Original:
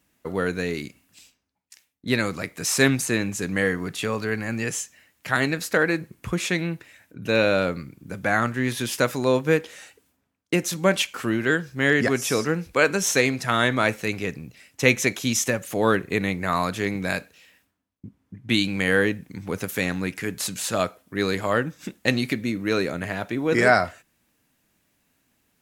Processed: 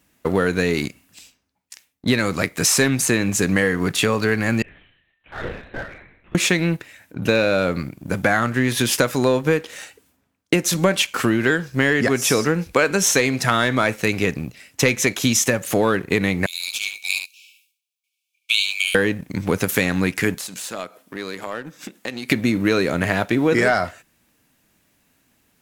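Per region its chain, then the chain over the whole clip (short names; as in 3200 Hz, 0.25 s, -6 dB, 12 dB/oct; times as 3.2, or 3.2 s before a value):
4.62–6.35 resonator 200 Hz, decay 0.82 s, mix 100% + LPC vocoder at 8 kHz whisper
16.46–18.95 brick-wall FIR high-pass 2200 Hz + echo 72 ms -7 dB
20.35–22.3 HPF 200 Hz + compressor 3:1, threshold -41 dBFS
whole clip: sample leveller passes 1; compressor, threshold -22 dBFS; gain +7.5 dB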